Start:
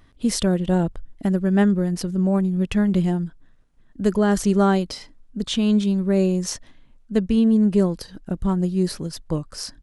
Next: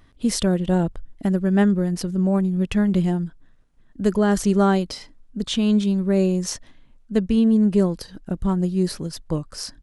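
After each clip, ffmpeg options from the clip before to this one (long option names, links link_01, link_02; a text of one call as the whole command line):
ffmpeg -i in.wav -af anull out.wav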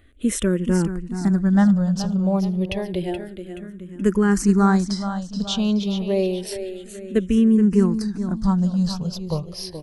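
ffmpeg -i in.wav -filter_complex "[0:a]aecho=1:1:426|852|1278|1704|2130:0.316|0.142|0.064|0.0288|0.013,asplit=2[link_01][link_02];[link_02]afreqshift=-0.29[link_03];[link_01][link_03]amix=inputs=2:normalize=1,volume=2.5dB" out.wav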